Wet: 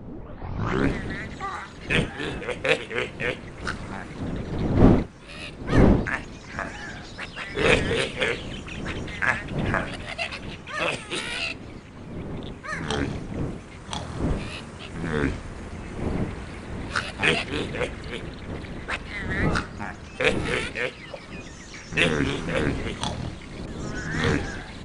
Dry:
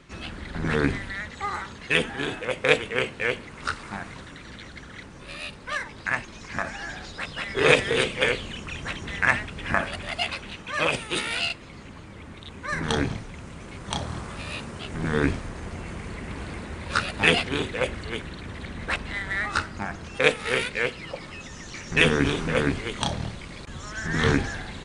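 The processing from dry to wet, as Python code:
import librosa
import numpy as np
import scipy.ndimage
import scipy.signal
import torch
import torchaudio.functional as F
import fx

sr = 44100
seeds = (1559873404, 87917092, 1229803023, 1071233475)

y = fx.tape_start_head(x, sr, length_s=0.9)
y = fx.dmg_wind(y, sr, seeds[0], corner_hz=290.0, level_db=-28.0)
y = fx.wow_flutter(y, sr, seeds[1], rate_hz=2.1, depth_cents=63.0)
y = F.gain(torch.from_numpy(y), -2.0).numpy()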